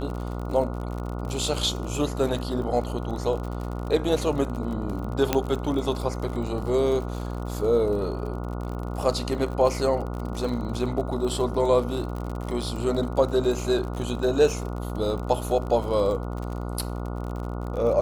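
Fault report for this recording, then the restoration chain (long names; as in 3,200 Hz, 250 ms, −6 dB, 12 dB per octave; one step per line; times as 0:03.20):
mains buzz 60 Hz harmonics 24 −31 dBFS
surface crackle 53 per second −32 dBFS
0:05.33: click −6 dBFS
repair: click removal
hum removal 60 Hz, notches 24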